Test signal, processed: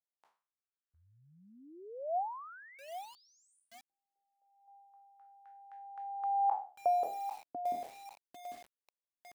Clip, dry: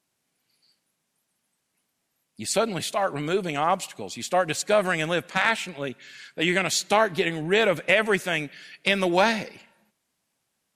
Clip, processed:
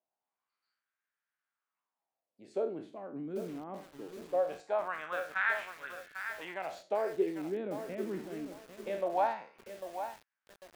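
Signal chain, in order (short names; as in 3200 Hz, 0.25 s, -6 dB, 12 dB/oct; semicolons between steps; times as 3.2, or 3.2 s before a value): spectral trails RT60 0.38 s; wah 0.22 Hz 250–1600 Hz, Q 3.7; lo-fi delay 0.797 s, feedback 35%, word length 7-bit, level -8.5 dB; gain -4.5 dB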